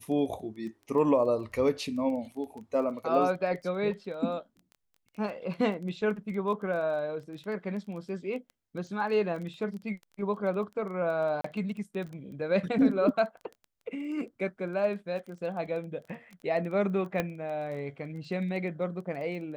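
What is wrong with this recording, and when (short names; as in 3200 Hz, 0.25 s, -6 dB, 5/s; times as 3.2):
crackle 15/s -38 dBFS
11.41–11.44 gap 34 ms
17.2 pop -15 dBFS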